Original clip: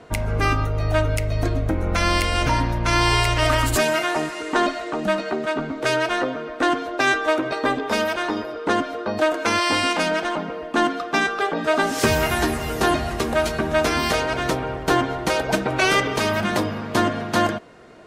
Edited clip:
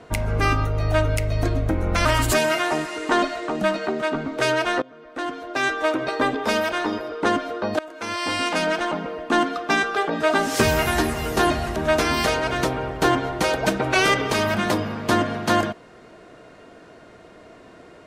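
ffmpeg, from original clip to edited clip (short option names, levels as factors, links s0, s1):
-filter_complex "[0:a]asplit=5[s0][s1][s2][s3][s4];[s0]atrim=end=2.052[s5];[s1]atrim=start=3.488:end=6.26,asetpts=PTS-STARTPTS,afade=t=out:st=2.768:d=0.004:c=hsin:silence=0.0749894[s6];[s2]atrim=start=6.26:end=9.23,asetpts=PTS-STARTPTS,afade=t=in:d=1.3:silence=0.0749894,afade=t=out:st=2.966:d=0.004:c=hsin:silence=0.0749894[s7];[s3]atrim=start=9.23:end=13.202,asetpts=PTS-STARTPTS,afade=t=in:d=0.91:silence=0.0749894[s8];[s4]atrim=start=13.618[s9];[s6][s7][s8]concat=n=3:v=0:a=1[s10];[s5][s10]acrossfade=d=0.004:c1=hsin:c2=hsin[s11];[s11][s9]acrossfade=d=0.004:c1=hsin:c2=hsin"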